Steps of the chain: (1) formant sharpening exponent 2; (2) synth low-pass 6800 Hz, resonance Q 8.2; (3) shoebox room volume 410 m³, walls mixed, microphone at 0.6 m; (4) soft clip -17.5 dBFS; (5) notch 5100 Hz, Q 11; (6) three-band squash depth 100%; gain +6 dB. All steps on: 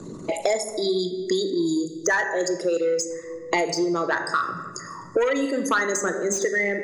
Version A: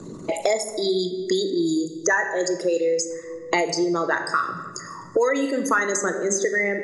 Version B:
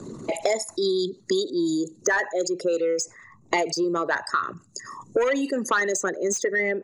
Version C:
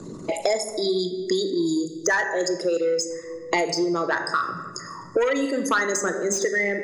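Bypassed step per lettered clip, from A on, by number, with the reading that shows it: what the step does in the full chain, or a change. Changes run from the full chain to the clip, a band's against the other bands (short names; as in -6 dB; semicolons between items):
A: 4, loudness change +1.0 LU; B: 3, 125 Hz band -2.0 dB; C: 5, 4 kHz band +1.5 dB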